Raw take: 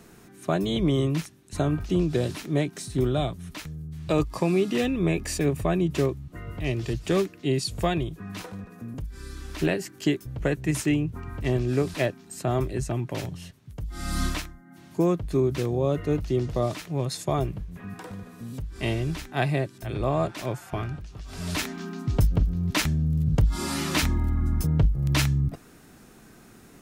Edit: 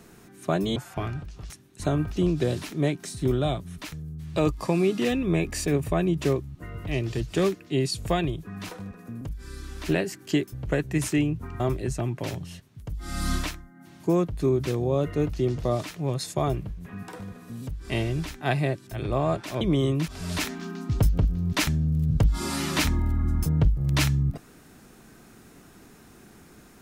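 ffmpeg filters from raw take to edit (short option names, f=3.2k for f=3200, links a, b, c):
-filter_complex "[0:a]asplit=6[a][b][c][d][e][f];[a]atrim=end=0.762[g];[b]atrim=start=20.518:end=21.262[h];[c]atrim=start=1.228:end=11.332[i];[d]atrim=start=12.508:end=20.522[j];[e]atrim=start=0.758:end=1.232[k];[f]atrim=start=21.258[l];[g][h]acrossfade=d=0.004:c1=hsin:c2=hsin[m];[m][i]acrossfade=d=0.004:c1=hsin:c2=hsin[n];[n][j]acrossfade=d=0.004:c1=hsin:c2=hsin[o];[o][k]acrossfade=d=0.004:c1=hsin:c2=hsin[p];[p][l]acrossfade=d=0.004:c1=hsin:c2=hsin"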